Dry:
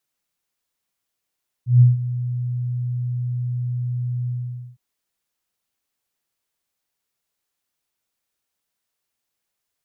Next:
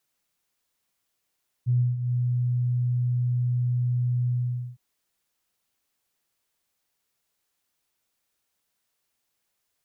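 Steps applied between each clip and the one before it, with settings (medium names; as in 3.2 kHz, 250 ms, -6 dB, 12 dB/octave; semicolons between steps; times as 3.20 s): compression 6:1, threshold -25 dBFS, peak gain reduction 14.5 dB; trim +2.5 dB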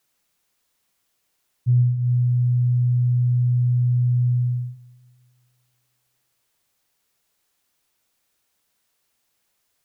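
algorithmic reverb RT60 2.1 s, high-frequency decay 0.85×, pre-delay 105 ms, DRR 17.5 dB; trim +6 dB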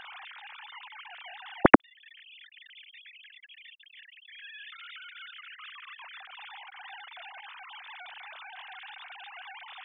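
formants replaced by sine waves; trim -10 dB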